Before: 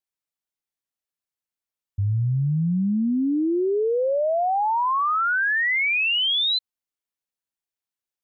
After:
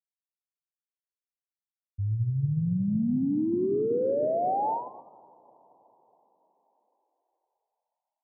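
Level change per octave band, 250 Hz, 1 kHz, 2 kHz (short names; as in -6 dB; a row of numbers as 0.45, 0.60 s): -4.0 dB, -8.5 dB, under -40 dB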